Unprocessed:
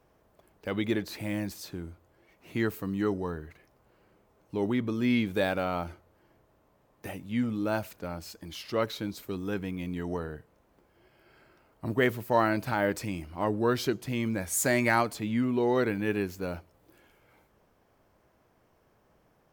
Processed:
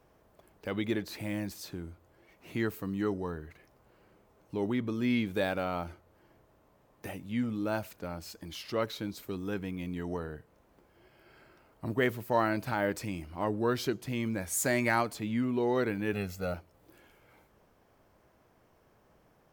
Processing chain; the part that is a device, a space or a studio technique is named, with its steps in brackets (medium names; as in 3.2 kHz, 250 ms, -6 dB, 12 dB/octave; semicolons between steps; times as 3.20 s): parallel compression (in parallel at -3 dB: compression, threshold -46 dBFS, peak gain reduction 24.5 dB); 16.13–16.54 s: on the sum: comb 1.5 ms, depth 93%; trim -3.5 dB